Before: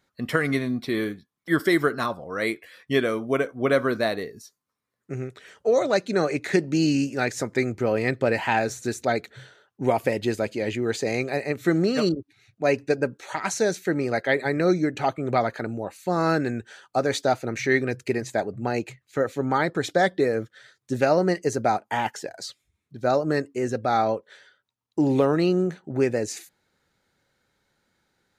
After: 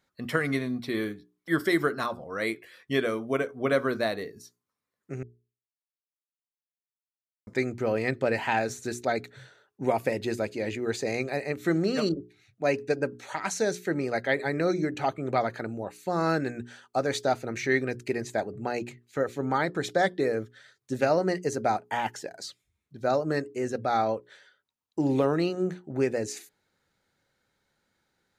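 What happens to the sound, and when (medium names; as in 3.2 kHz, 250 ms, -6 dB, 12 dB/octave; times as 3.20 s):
5.23–7.47 s: mute
9.06–11.39 s: band-stop 3.1 kHz
whole clip: hum notches 60/120/180/240/300/360/420 Hz; trim -3.5 dB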